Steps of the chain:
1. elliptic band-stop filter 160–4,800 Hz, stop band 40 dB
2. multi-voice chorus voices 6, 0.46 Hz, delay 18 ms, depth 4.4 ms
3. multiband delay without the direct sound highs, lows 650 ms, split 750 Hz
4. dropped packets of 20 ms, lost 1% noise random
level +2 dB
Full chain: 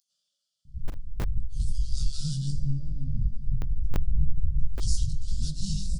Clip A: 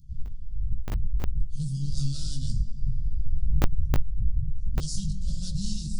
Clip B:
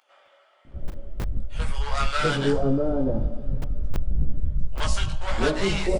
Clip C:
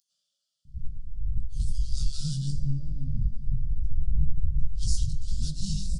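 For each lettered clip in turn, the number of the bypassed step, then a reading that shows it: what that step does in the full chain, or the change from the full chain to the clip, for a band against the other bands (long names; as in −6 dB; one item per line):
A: 3, 1 kHz band +6.0 dB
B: 1, 500 Hz band +17.0 dB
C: 4, change in momentary loudness spread +2 LU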